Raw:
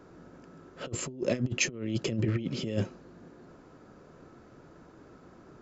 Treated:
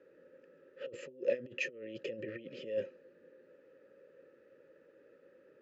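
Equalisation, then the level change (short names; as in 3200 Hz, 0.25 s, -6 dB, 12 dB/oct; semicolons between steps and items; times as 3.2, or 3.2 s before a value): vowel filter e; Butterworth band-stop 700 Hz, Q 3.5; bell 1200 Hz +9.5 dB 0.24 oct; +3.5 dB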